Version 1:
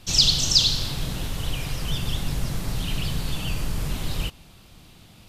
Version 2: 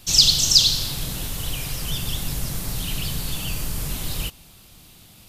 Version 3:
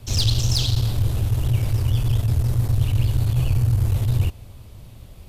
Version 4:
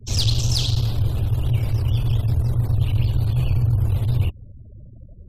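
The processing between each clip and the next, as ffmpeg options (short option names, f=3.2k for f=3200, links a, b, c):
-af "aemphasis=mode=production:type=50kf,volume=-1.5dB"
-af "tiltshelf=f=1.2k:g=10,asoftclip=type=tanh:threshold=-15.5dB,afreqshift=-130,volume=1.5dB"
-filter_complex "[0:a]afftfilt=real='re*gte(hypot(re,im),0.00891)':imag='im*gte(hypot(re,im),0.00891)':win_size=1024:overlap=0.75,acrossover=split=400|820|6700[a][b][c][d];[b]acompressor=mode=upward:threshold=-55dB:ratio=2.5[e];[a][e][c][d]amix=inputs=4:normalize=0"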